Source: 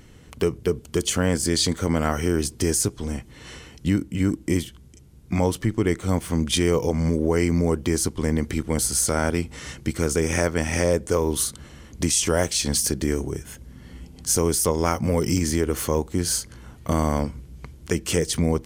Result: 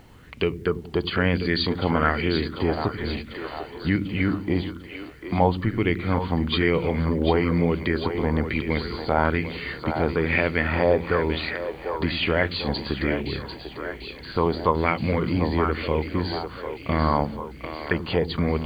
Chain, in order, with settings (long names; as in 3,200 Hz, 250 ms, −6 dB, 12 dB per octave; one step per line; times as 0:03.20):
linear-phase brick-wall low-pass 4,800 Hz
echo with a time of its own for lows and highs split 320 Hz, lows 87 ms, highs 745 ms, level −8 dB
bit reduction 10 bits
auto-filter bell 1.1 Hz 760–2,600 Hz +12 dB
level −2 dB